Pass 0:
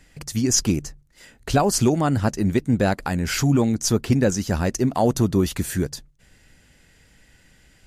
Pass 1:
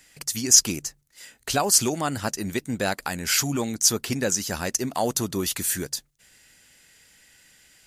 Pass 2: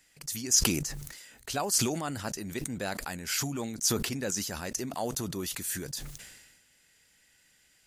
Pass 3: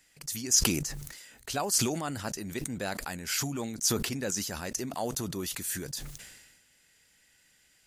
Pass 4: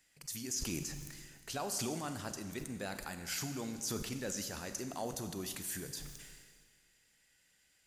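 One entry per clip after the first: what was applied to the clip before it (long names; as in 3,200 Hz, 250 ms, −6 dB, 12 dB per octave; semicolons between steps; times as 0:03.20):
spectral tilt +3 dB per octave; level −2.5 dB
level that may fall only so fast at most 44 dB per second; level −9 dB
no processing that can be heard
brickwall limiter −20.5 dBFS, peak gain reduction 11 dB; four-comb reverb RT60 1.7 s, combs from 31 ms, DRR 8 dB; level −7 dB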